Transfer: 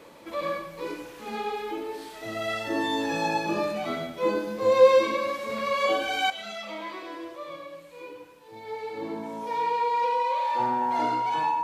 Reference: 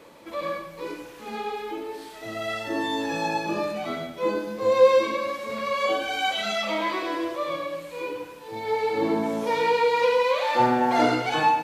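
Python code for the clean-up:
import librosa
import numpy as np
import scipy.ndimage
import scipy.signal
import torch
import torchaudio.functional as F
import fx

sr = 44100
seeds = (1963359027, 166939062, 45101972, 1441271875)

y = fx.notch(x, sr, hz=950.0, q=30.0)
y = fx.fix_level(y, sr, at_s=6.3, step_db=10.0)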